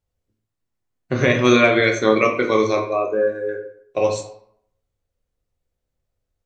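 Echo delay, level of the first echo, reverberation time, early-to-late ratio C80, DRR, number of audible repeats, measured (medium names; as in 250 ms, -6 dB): no echo, no echo, 0.70 s, 11.0 dB, 2.5 dB, no echo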